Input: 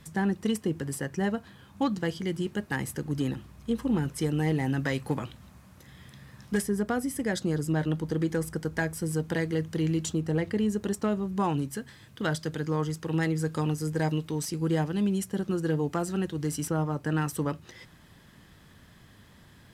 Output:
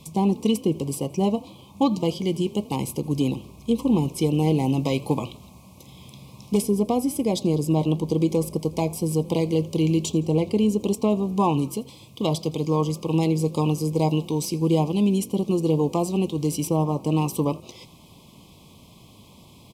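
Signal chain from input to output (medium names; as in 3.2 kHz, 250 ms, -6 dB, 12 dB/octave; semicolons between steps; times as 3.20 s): elliptic band-stop 1.1–2.3 kHz, stop band 40 dB; bass shelf 99 Hz -9.5 dB; on a send: frequency-shifting echo 83 ms, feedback 49%, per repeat +43 Hz, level -22.5 dB; on the sum: dynamic bell 7.9 kHz, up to -5 dB, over -51 dBFS, Q 1.1; trim +8 dB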